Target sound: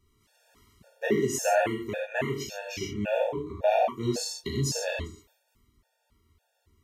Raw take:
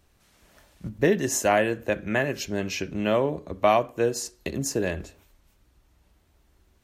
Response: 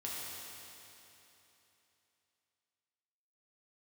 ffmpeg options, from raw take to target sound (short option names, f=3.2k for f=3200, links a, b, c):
-filter_complex "[0:a]asettb=1/sr,asplit=3[a][b][c];[a]atrim=end=4.034[d];[b]atrim=start=4.03:end=4.98,asetpts=PTS-STARTPTS,afade=t=in:d=0.004:c=qsin,afade=t=out:st=0.946:d=0.004:c=qsin,equalizer=f=125:t=o:w=1:g=6,equalizer=f=1k:t=o:w=1:g=5,equalizer=f=2k:t=o:w=1:g=-3,equalizer=f=4k:t=o:w=1:g=12[e];[c]atrim=start=4.976[f];[d][e]acrossfade=d=0.004:c1=hsin:c2=qsin[g];[g][f]acrossfade=d=0.004:c1=qsin:c2=hsin[h];[1:a]atrim=start_sample=2205,afade=t=out:st=0.35:d=0.01,atrim=end_sample=15876,atrim=end_sample=6174[i];[h][i]afir=irnorm=-1:irlink=0,afftfilt=real='re*gt(sin(2*PI*1.8*pts/sr)*(1-2*mod(floor(b*sr/1024/470),2)),0)':imag='im*gt(sin(2*PI*1.8*pts/sr)*(1-2*mod(floor(b*sr/1024/470),2)),0)':win_size=1024:overlap=0.75"